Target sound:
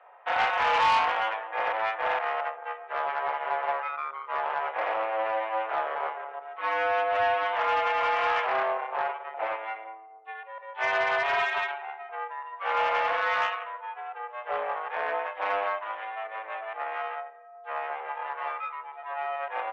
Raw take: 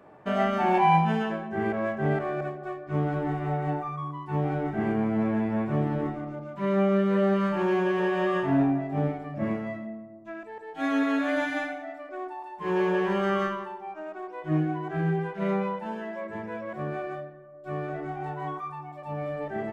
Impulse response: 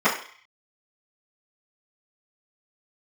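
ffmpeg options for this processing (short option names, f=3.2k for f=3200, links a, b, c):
-af "aeval=exprs='0.316*(cos(1*acos(clip(val(0)/0.316,-1,1)))-cos(1*PI/2))+0.0794*(cos(8*acos(clip(val(0)/0.316,-1,1)))-cos(8*PI/2))':c=same,highpass=f=490:t=q:w=0.5412,highpass=f=490:t=q:w=1.307,lowpass=f=3.2k:t=q:w=0.5176,lowpass=f=3.2k:t=q:w=0.7071,lowpass=f=3.2k:t=q:w=1.932,afreqshift=110,asoftclip=type=tanh:threshold=-17.5dB,volume=1dB"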